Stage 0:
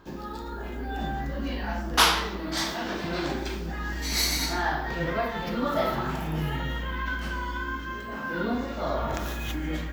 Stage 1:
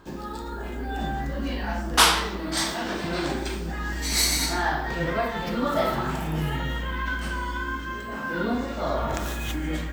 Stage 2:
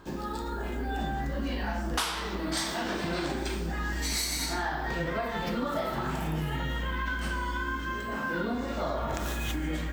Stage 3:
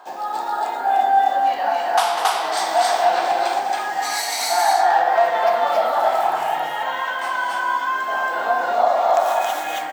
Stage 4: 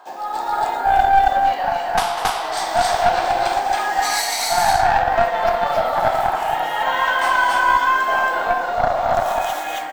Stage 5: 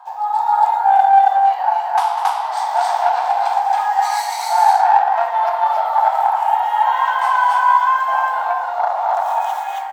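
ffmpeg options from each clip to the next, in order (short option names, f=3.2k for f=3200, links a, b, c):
-af "equalizer=f=8.5k:t=o:w=0.31:g=11,volume=2dB"
-af "acompressor=threshold=-27dB:ratio=10"
-filter_complex "[0:a]highpass=f=740:t=q:w=8.4,asplit=2[a][b];[b]aecho=0:1:198.3|274.1:0.316|1[c];[a][c]amix=inputs=2:normalize=0,volume=4dB"
-af "aeval=exprs='0.596*(cos(1*acos(clip(val(0)/0.596,-1,1)))-cos(1*PI/2))+0.237*(cos(2*acos(clip(val(0)/0.596,-1,1)))-cos(2*PI/2))+0.0106*(cos(8*acos(clip(val(0)/0.596,-1,1)))-cos(8*PI/2))':c=same,dynaudnorm=f=190:g=5:m=11.5dB,volume=-1dB"
-af "highpass=f=870:t=q:w=6.5,volume=-7.5dB"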